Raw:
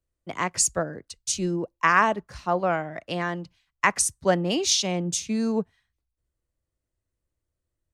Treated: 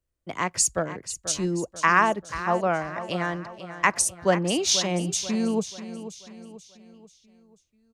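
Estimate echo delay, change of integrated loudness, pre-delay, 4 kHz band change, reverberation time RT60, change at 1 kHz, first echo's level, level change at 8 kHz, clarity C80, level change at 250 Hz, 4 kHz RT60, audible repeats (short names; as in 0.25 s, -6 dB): 0.487 s, 0.0 dB, none, +0.5 dB, none, +0.5 dB, -12.5 dB, +0.5 dB, none, +0.5 dB, none, 4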